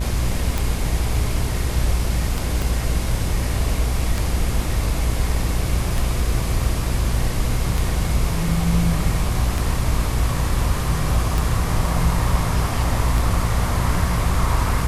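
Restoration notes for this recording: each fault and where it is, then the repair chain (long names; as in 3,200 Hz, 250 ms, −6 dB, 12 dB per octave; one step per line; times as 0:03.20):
mains buzz 60 Hz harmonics 33 −24 dBFS
scratch tick 33 1/3 rpm
0:02.62: click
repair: click removal
hum removal 60 Hz, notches 33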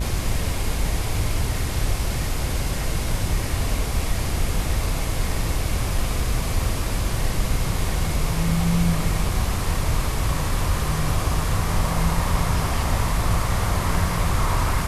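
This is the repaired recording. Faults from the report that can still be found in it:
0:02.62: click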